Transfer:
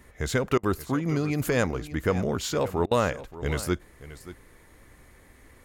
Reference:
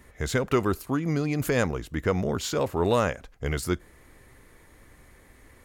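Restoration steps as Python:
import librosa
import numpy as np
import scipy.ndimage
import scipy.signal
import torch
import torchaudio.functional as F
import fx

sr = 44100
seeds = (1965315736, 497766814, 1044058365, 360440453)

y = fx.fix_interpolate(x, sr, at_s=(0.58, 2.86), length_ms=51.0)
y = fx.fix_echo_inverse(y, sr, delay_ms=579, level_db=-15.5)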